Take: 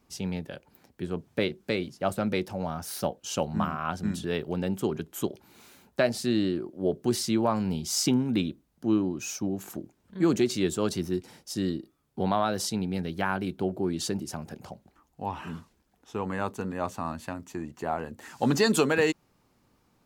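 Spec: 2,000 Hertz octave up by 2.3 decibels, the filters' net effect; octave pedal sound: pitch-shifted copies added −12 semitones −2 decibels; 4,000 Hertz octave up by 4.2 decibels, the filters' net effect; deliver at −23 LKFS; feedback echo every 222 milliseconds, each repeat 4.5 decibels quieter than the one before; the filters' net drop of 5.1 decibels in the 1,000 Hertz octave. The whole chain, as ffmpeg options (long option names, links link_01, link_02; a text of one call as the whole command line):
ffmpeg -i in.wav -filter_complex "[0:a]equalizer=frequency=1000:width_type=o:gain=-8.5,equalizer=frequency=2000:width_type=o:gain=4.5,equalizer=frequency=4000:width_type=o:gain=4.5,aecho=1:1:222|444|666|888|1110|1332|1554|1776|1998:0.596|0.357|0.214|0.129|0.0772|0.0463|0.0278|0.0167|0.01,asplit=2[link_01][link_02];[link_02]asetrate=22050,aresample=44100,atempo=2,volume=-2dB[link_03];[link_01][link_03]amix=inputs=2:normalize=0,volume=3dB" out.wav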